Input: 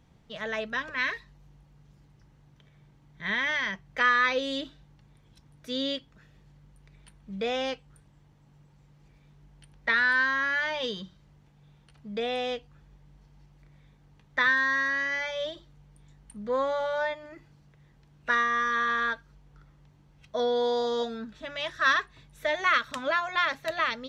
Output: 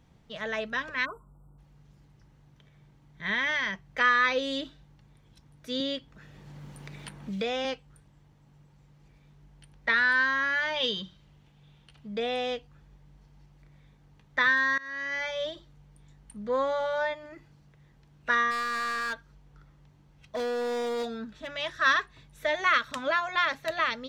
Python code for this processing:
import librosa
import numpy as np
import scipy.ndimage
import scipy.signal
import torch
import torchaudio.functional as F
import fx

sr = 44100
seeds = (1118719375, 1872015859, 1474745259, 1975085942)

y = fx.spec_erase(x, sr, start_s=1.05, length_s=0.53, low_hz=1500.0, high_hz=7400.0)
y = fx.band_squash(y, sr, depth_pct=70, at=(5.8, 7.65))
y = fx.peak_eq(y, sr, hz=3100.0, db=7.5, octaves=0.75, at=(10.76, 12.07))
y = fx.overload_stage(y, sr, gain_db=28.5, at=(18.5, 21.49), fade=0.02)
y = fx.edit(y, sr, fx.fade_in_from(start_s=14.78, length_s=0.47, floor_db=-22.5), tone=tone)